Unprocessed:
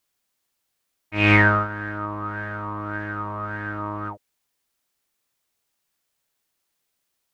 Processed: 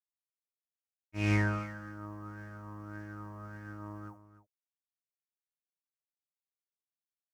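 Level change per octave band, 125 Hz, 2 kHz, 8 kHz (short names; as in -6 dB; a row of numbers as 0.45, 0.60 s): -9.0 dB, -18.0 dB, n/a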